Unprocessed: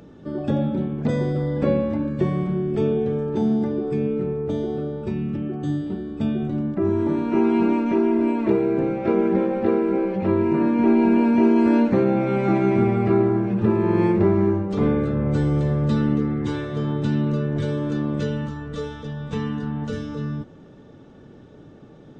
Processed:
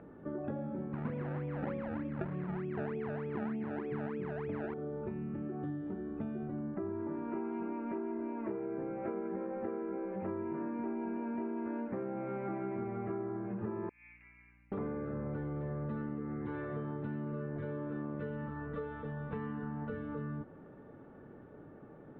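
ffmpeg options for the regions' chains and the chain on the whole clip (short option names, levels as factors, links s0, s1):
-filter_complex "[0:a]asettb=1/sr,asplit=3[s0][s1][s2];[s0]atrim=end=0.934[s3];[s1]atrim=start=0.93:end=4.74,asetpts=PTS-STARTPTS,afade=t=in:d=0.004:c=qsin,afade=t=out:st=3.806:d=0.004:c=qsin,highpass=59,acrusher=samples=29:mix=1:aa=0.000001:lfo=1:lforange=29:lforate=3.3,lowshelf=f=360:g=8.5[s4];[s2]atrim=start=4.736[s5];[s3][s4]acrossfade=d=0.004:c1=hsin:c2=qsin[s6];[s6][s5]acrossfade=d=0.004:c1=qsin:c2=hsin,asettb=1/sr,asplit=3[s7][s8][s9];[s7]atrim=end=13.894[s10];[s8]atrim=start=13.89:end=14.72,asetpts=PTS-STARTPTS,afade=t=in:d=0.004:c=qsin,afade=t=out:st=0.826:d=0.004:c=qsin,asuperpass=centerf=2400:order=4:qfactor=4.6,aeval=exprs='val(0)+0.002*(sin(2*PI*60*n/s)+sin(2*PI*2*60*n/s)/2+sin(2*PI*3*60*n/s)/3+sin(2*PI*4*60*n/s)/4+sin(2*PI*5*60*n/s)/5)':c=same[s11];[s9]atrim=start=14.716[s12];[s10][s11]acrossfade=d=0.004:c1=hsin:c2=qsin[s13];[s13][s12]acrossfade=d=0.004:c1=qsin:c2=hsin,lowpass=f=1900:w=0.5412,lowpass=f=1900:w=1.3066,lowshelf=f=320:g=-7.5,acompressor=threshold=0.0224:ratio=6,volume=0.708"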